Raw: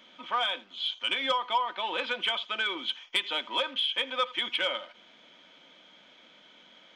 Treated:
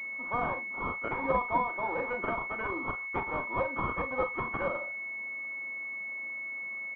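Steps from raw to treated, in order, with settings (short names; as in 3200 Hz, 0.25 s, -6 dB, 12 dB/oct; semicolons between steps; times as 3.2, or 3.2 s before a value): early reflections 36 ms -9 dB, 51 ms -12.5 dB; pulse-width modulation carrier 2200 Hz; gain +1.5 dB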